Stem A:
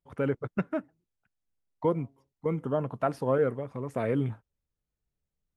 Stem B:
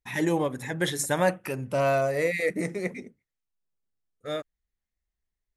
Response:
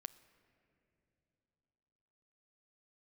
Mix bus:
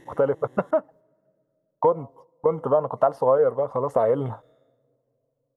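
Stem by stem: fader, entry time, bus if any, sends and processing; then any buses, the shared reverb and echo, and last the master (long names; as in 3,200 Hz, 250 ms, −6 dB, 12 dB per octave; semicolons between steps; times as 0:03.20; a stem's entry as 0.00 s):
+3.0 dB, 0.00 s, send −22 dB, noise gate −56 dBFS, range −22 dB; flat-topped bell 750 Hz +15 dB
−13.5 dB, 0.00 s, muted 0:00.71–0:02.97, send −5 dB, spectrum smeared in time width 433 ms; automatic ducking −14 dB, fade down 0.25 s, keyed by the first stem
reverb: on, RT60 3.4 s, pre-delay 8 ms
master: Butterworth band-reject 2,400 Hz, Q 5.1; downward compressor 2.5 to 1, threshold −20 dBFS, peak gain reduction 10.5 dB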